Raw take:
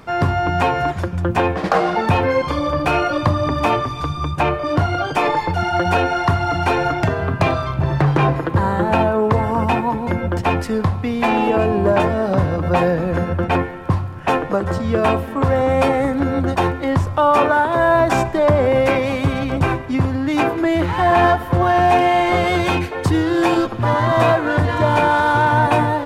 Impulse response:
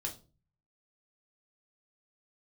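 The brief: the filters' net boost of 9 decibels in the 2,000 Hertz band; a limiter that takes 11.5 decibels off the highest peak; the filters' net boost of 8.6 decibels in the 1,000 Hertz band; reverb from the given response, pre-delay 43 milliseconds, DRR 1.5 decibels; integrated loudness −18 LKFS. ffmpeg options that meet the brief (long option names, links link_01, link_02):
-filter_complex "[0:a]equalizer=frequency=1000:width_type=o:gain=9,equalizer=frequency=2000:width_type=o:gain=8.5,alimiter=limit=-6dB:level=0:latency=1,asplit=2[link_01][link_02];[1:a]atrim=start_sample=2205,adelay=43[link_03];[link_02][link_03]afir=irnorm=-1:irlink=0,volume=-1.5dB[link_04];[link_01][link_04]amix=inputs=2:normalize=0,volume=-5.5dB"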